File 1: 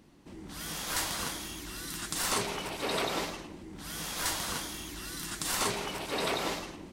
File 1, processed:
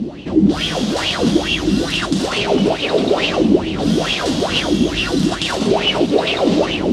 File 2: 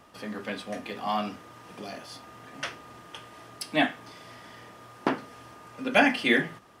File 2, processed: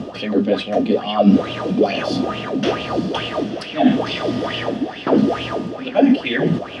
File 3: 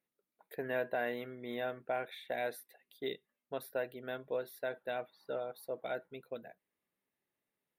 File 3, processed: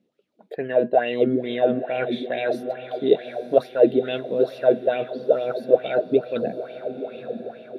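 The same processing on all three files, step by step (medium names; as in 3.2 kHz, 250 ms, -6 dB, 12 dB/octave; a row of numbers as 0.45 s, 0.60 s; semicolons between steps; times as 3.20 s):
gain riding within 4 dB 0.5 s; low-pass 5.5 kHz 12 dB/octave; high-order bell 1.4 kHz -11 dB; reverse; compression 12:1, threshold -42 dBFS; reverse; high-pass 53 Hz; treble shelf 3.7 kHz -8.5 dB; on a send: echo that smears into a reverb 931 ms, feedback 44%, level -10 dB; on the sum: sweeping bell 2.3 Hz 200–2900 Hz +17 dB; peak normalisation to -1.5 dBFS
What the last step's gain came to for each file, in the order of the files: +24.0 dB, +21.5 dB, +19.0 dB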